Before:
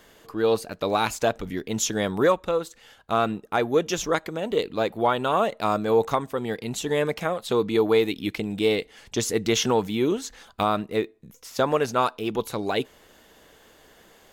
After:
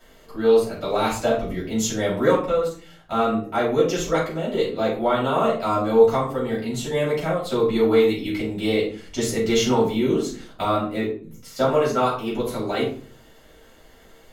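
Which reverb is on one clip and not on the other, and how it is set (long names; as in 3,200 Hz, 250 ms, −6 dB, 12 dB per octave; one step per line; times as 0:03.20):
rectangular room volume 330 cubic metres, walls furnished, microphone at 7 metres
level −9.5 dB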